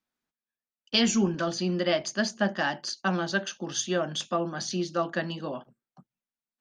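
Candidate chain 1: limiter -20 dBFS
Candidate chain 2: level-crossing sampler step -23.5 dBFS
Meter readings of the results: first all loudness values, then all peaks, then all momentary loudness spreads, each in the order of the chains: -31.0, -29.0 LUFS; -20.0, -10.0 dBFS; 5, 8 LU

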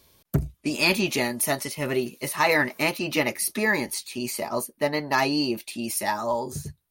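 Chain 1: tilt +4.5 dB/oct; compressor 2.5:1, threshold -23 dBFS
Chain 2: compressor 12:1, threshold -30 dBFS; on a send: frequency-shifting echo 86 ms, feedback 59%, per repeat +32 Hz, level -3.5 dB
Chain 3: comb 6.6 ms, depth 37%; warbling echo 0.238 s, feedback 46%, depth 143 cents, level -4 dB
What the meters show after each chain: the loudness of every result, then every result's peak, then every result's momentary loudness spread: -24.0, -32.0, -23.0 LUFS; -5.5, -17.0, -6.5 dBFS; 7, 4, 8 LU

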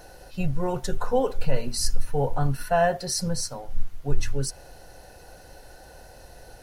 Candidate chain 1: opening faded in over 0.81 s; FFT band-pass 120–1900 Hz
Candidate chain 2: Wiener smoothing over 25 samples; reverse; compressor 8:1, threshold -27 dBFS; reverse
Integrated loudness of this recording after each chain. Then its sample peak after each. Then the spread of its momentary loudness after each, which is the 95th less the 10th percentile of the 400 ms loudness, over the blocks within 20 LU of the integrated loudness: -29.0, -35.5 LUFS; -10.0, -18.5 dBFS; 17, 20 LU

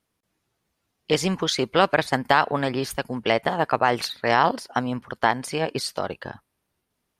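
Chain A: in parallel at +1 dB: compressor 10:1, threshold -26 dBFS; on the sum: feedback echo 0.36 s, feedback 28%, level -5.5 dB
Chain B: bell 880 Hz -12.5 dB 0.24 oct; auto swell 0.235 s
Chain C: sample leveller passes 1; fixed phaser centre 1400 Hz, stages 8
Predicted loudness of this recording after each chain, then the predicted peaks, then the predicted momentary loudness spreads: -19.5, -31.0, -23.5 LUFS; -1.5, -8.5, -5.0 dBFS; 9, 13, 8 LU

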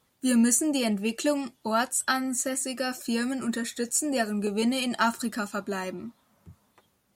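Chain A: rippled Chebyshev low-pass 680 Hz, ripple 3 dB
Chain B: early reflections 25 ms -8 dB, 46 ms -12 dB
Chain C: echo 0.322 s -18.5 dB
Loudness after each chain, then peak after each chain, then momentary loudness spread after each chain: -31.0, -26.0, -27.0 LUFS; -15.5, -10.0, -9.5 dBFS; 10, 9, 9 LU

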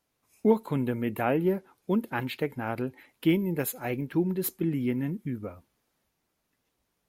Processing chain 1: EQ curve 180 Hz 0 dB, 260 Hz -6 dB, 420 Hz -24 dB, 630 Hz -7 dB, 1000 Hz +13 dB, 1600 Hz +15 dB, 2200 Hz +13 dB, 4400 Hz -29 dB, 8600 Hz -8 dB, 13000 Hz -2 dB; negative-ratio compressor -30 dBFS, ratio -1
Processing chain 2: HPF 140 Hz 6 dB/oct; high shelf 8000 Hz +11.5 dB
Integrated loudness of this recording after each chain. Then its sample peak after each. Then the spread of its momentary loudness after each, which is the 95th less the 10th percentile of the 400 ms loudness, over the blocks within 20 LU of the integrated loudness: -31.5, -29.0 LUFS; -15.0, -9.0 dBFS; 7, 10 LU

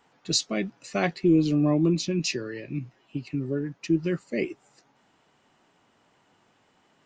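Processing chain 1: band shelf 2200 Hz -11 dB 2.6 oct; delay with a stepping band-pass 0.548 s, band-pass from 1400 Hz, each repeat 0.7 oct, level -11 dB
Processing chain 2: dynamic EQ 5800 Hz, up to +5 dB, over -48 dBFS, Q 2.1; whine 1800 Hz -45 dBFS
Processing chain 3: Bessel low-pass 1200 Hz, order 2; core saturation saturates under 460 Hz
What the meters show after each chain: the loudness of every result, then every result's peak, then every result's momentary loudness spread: -27.5, -26.5, -29.5 LUFS; -11.5, -7.5, -12.0 dBFS; 13, 24, 13 LU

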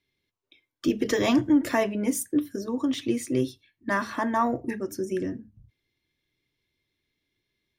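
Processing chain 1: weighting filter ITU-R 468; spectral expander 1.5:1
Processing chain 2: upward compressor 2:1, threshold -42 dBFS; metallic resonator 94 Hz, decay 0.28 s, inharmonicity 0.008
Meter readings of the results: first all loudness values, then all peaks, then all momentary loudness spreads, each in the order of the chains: -26.5, -34.5 LUFS; -8.0, -15.5 dBFS; 16, 15 LU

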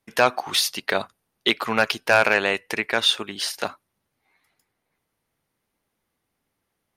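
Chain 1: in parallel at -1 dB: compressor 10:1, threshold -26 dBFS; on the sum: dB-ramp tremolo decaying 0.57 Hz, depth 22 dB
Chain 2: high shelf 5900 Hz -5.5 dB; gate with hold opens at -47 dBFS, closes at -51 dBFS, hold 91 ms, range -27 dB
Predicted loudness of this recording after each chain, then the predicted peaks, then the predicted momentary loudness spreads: -25.5, -22.5 LUFS; -3.0, -4.5 dBFS; 17, 10 LU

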